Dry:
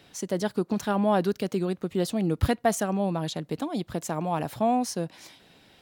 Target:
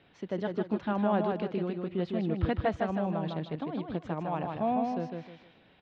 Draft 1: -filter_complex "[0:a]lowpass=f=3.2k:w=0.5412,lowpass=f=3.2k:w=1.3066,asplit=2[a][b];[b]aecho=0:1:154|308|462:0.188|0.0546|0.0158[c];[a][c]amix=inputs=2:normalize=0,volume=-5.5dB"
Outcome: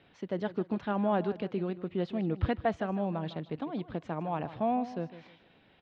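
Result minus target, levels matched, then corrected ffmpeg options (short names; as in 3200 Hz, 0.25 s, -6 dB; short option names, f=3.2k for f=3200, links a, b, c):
echo-to-direct -10.5 dB
-filter_complex "[0:a]lowpass=f=3.2k:w=0.5412,lowpass=f=3.2k:w=1.3066,asplit=2[a][b];[b]aecho=0:1:154|308|462|616:0.631|0.183|0.0531|0.0154[c];[a][c]amix=inputs=2:normalize=0,volume=-5.5dB"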